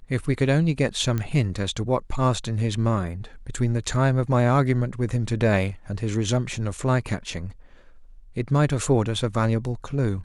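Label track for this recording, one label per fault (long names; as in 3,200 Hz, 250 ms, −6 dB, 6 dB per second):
1.180000	1.180000	click −14 dBFS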